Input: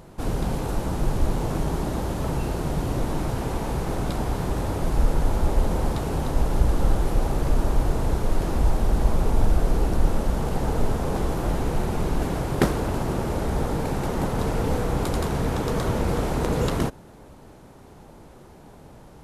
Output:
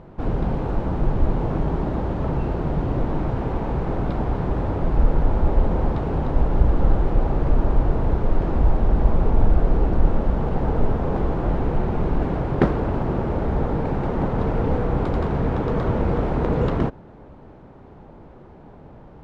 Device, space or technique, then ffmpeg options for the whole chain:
phone in a pocket: -af "lowpass=3200,highshelf=f=2300:g=-10.5,volume=1.41"

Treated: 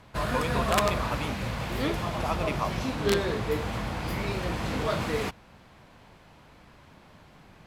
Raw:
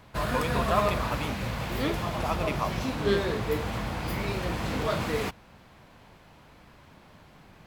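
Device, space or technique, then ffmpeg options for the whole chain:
overflowing digital effects unit: -af "aeval=exprs='(mod(5.01*val(0)+1,2)-1)/5.01':c=same,lowpass=13000"

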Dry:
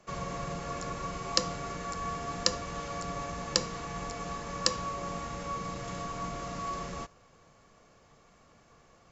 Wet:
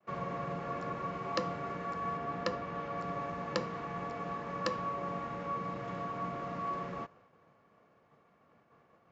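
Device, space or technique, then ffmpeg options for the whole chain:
hearing-loss simulation: -filter_complex "[0:a]lowpass=2100,agate=range=0.0224:threshold=0.00158:ratio=3:detection=peak,highpass=130,asettb=1/sr,asplit=3[s0][s1][s2];[s0]atrim=end=2.174[s3];[s1]atrim=start=2.17:end=2.98,asetpts=PTS-STARTPTS,afade=t=in:d=0.004:c=qsin,afade=t=out:st=0.806:d=0.004:c=qsin,highshelf=f=7000:g=-8.5[s4];[s2]atrim=start=2.976[s5];[s3][s4]acrossfade=d=0.004:c1=hsin:c2=qsin[s6];[s6][s5]acrossfade=d=0.004:c1=qsin:c2=hsin"

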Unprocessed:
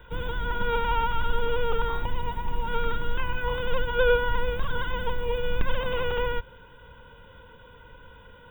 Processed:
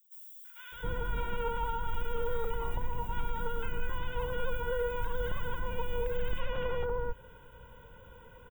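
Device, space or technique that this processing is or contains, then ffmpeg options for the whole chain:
over-bright horn tweeter: -filter_complex "[0:a]highshelf=f=4900:t=q:w=3:g=8.5,alimiter=limit=0.106:level=0:latency=1:release=159,equalizer=f=270:t=o:w=0.77:g=-2.5,acrossover=split=1400|5500[s0][s1][s2];[s1]adelay=450[s3];[s0]adelay=720[s4];[s4][s3][s2]amix=inputs=3:normalize=0,volume=0.75"

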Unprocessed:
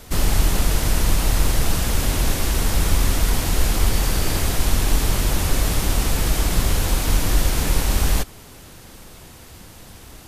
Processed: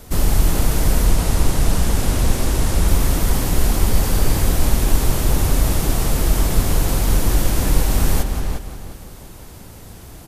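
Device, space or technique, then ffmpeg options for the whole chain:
ducked delay: -filter_complex "[0:a]asplit=3[s0][s1][s2];[s1]adelay=177,volume=0.447[s3];[s2]apad=whole_len=461040[s4];[s3][s4]sidechaincompress=threshold=0.0708:ratio=8:attack=16:release=390[s5];[s0][s5]amix=inputs=2:normalize=0,asettb=1/sr,asplit=3[s6][s7][s8];[s6]atrim=end=1.074[s9];[s7]atrim=start=1.07:end=2.88,asetpts=PTS-STARTPTS,afade=t=in:d=0.004:c=qsin,afade=t=out:st=1.806:d=0.004:c=qsin,lowpass=12000[s10];[s8]atrim=start=2.876[s11];[s9][s10]acrossfade=d=0.004:c1=hsin:c2=qsin[s12];[s12][s11]acrossfade=d=0.004:c1=qsin:c2=hsin,equalizer=f=2900:t=o:w=2.9:g=-6,asplit=2[s13][s14];[s14]adelay=354,lowpass=f=3700:p=1,volume=0.562,asplit=2[s15][s16];[s16]adelay=354,lowpass=f=3700:p=1,volume=0.27,asplit=2[s17][s18];[s18]adelay=354,lowpass=f=3700:p=1,volume=0.27,asplit=2[s19][s20];[s20]adelay=354,lowpass=f=3700:p=1,volume=0.27[s21];[s13][s15][s17][s19][s21]amix=inputs=5:normalize=0,volume=1.33"

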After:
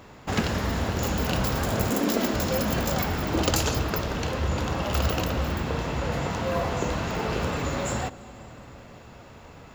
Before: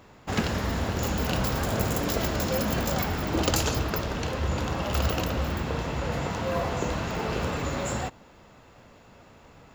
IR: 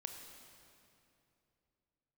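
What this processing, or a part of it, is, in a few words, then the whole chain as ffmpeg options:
compressed reverb return: -filter_complex "[0:a]asettb=1/sr,asplit=3[s0][s1][s2];[s0]atrim=end=1.904[s3];[s1]atrim=start=1.9:end=2.34,asetpts=PTS-STARTPTS,afade=t=in:d=0.004:c=qsin,afade=t=out:st=0.436:d=0.004:c=qsin,lowshelf=f=160:t=q:w=3:g=-12.5[s4];[s2]atrim=start=2.336[s5];[s3][s4]acrossfade=d=0.004:c1=hsin:c2=qsin[s6];[s6][s5]acrossfade=d=0.004:c1=qsin:c2=hsin,asplit=2[s7][s8];[1:a]atrim=start_sample=2205[s9];[s8][s9]afir=irnorm=-1:irlink=0,acompressor=threshold=0.00794:ratio=6,volume=1.19[s10];[s7][s10]amix=inputs=2:normalize=0"

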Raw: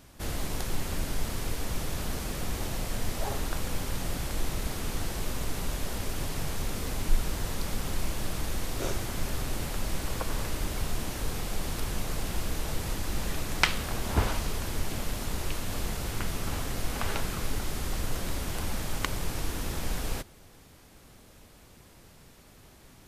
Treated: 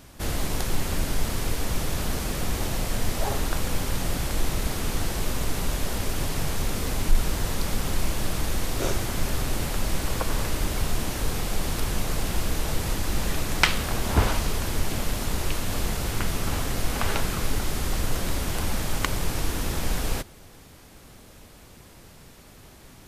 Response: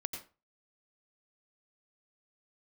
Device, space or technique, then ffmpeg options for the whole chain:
parallel distortion: -filter_complex "[0:a]asplit=2[s0][s1];[s1]asoftclip=type=hard:threshold=0.126,volume=0.562[s2];[s0][s2]amix=inputs=2:normalize=0,volume=1.19"

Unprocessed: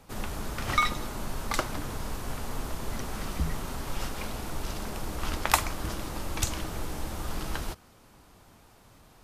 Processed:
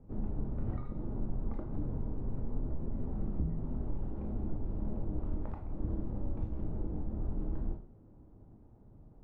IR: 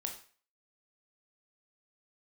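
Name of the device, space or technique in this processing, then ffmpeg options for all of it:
television next door: -filter_complex "[0:a]acompressor=threshold=0.0316:ratio=6,lowpass=330[s0];[1:a]atrim=start_sample=2205[s1];[s0][s1]afir=irnorm=-1:irlink=0,volume=1.5"

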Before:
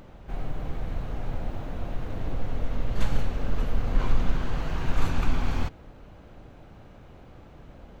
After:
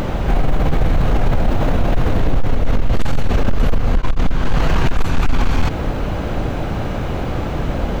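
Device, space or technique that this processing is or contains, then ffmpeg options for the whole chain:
loud club master: -af "acompressor=threshold=0.0708:ratio=3,asoftclip=type=hard:threshold=0.075,alimiter=level_in=47.3:limit=0.891:release=50:level=0:latency=1,volume=0.473"

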